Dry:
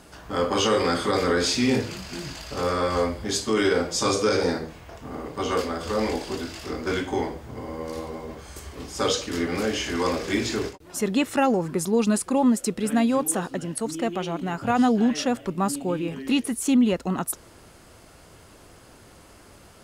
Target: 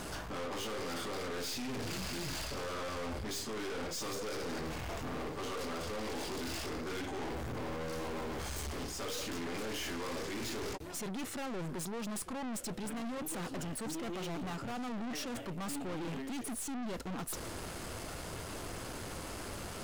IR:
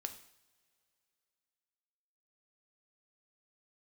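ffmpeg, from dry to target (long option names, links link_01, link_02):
-af "areverse,acompressor=threshold=-34dB:ratio=12,areverse,aeval=exprs='(tanh(282*val(0)+0.45)-tanh(0.45))/282':channel_layout=same,volume=11dB"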